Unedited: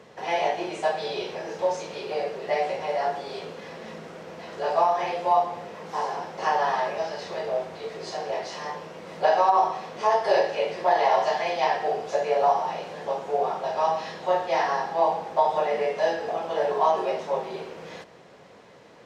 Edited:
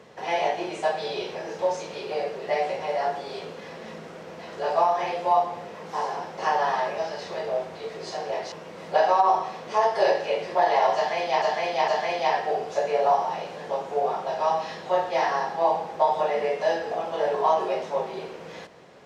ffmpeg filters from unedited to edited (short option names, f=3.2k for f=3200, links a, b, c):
-filter_complex "[0:a]asplit=4[a][b][c][d];[a]atrim=end=8.522[e];[b]atrim=start=8.808:end=11.712[f];[c]atrim=start=11.248:end=11.712[g];[d]atrim=start=11.248[h];[e][f]acrossfade=d=0.004:c1=hsin:c2=hsin[i];[i][g]acrossfade=d=0.004:c1=hsin:c2=hsin[j];[j][h]acrossfade=d=0.004:c1=hsin:c2=hsin"